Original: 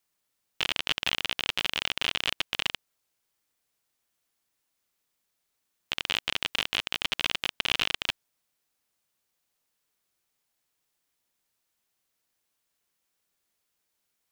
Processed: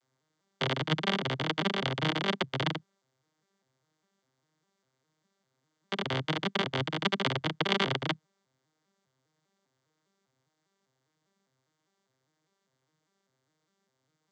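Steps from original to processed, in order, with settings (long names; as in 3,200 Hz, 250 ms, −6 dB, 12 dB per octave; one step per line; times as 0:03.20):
vocoder with an arpeggio as carrier minor triad, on C3, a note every 201 ms
parametric band 2,600 Hz −10 dB 0.24 octaves
level +2 dB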